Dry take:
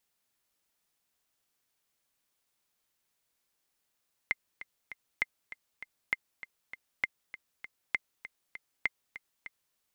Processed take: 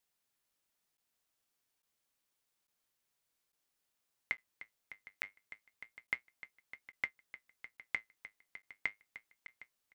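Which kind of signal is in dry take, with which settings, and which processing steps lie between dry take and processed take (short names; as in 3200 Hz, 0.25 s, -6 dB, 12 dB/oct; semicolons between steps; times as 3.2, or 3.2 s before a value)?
metronome 198 bpm, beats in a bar 3, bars 6, 2090 Hz, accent 15 dB -14 dBFS
echo 0.76 s -19 dB; flange 0.29 Hz, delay 6.5 ms, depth 3.8 ms, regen -64%; crackling interface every 0.85 s, samples 512, zero, from 0.97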